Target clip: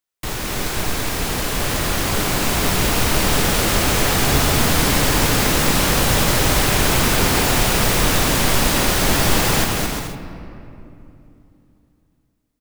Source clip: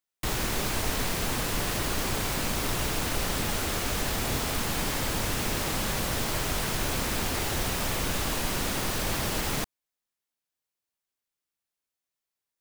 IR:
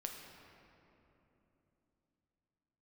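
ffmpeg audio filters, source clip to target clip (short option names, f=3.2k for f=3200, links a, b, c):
-filter_complex "[0:a]aecho=1:1:220|352|431.2|478.7|507.2:0.631|0.398|0.251|0.158|0.1,asplit=2[a][b];[1:a]atrim=start_sample=2205[c];[b][c]afir=irnorm=-1:irlink=0,volume=2dB[d];[a][d]amix=inputs=2:normalize=0,dynaudnorm=f=380:g=11:m=11.5dB,volume=-2dB"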